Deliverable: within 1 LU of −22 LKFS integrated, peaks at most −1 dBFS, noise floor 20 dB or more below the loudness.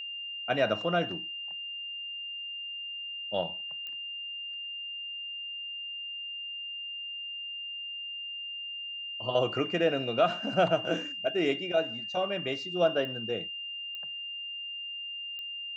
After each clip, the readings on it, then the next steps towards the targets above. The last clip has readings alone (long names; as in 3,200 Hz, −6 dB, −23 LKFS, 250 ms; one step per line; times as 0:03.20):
number of clicks 4; interfering tone 2,800 Hz; level of the tone −36 dBFS; integrated loudness −32.0 LKFS; sample peak −12.5 dBFS; target loudness −22.0 LKFS
→ click removal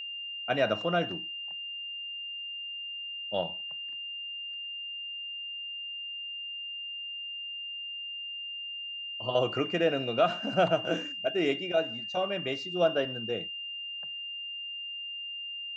number of clicks 0; interfering tone 2,800 Hz; level of the tone −36 dBFS
→ notch filter 2,800 Hz, Q 30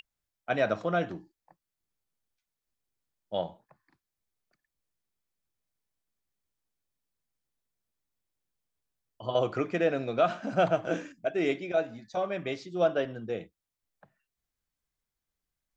interfering tone none found; integrated loudness −30.5 LKFS; sample peak −13.0 dBFS; target loudness −22.0 LKFS
→ level +8.5 dB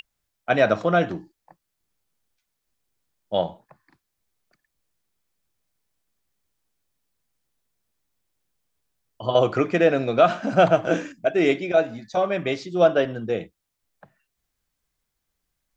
integrated loudness −22.0 LKFS; sample peak −4.5 dBFS; background noise floor −80 dBFS